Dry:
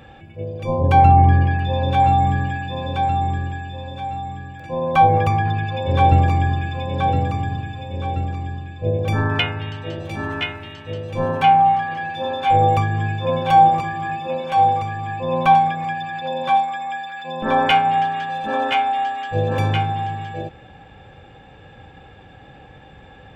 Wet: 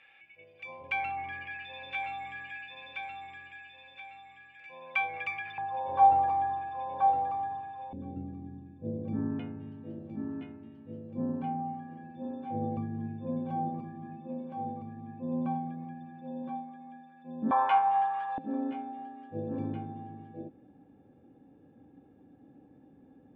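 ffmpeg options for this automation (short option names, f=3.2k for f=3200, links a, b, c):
-af "asetnsamples=n=441:p=0,asendcmd='5.58 bandpass f 880;7.93 bandpass f 240;17.51 bandpass f 1000;18.38 bandpass f 270',bandpass=f=2.3k:t=q:w=5:csg=0"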